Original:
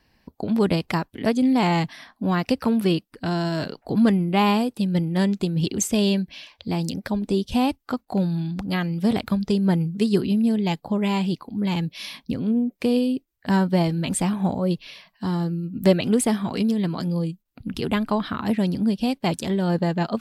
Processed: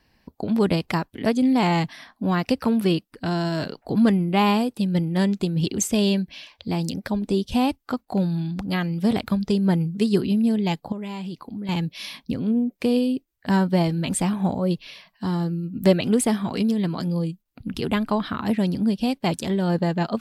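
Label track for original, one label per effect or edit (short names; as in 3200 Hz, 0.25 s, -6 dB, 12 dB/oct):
10.920000	11.690000	compressor, threshold -29 dBFS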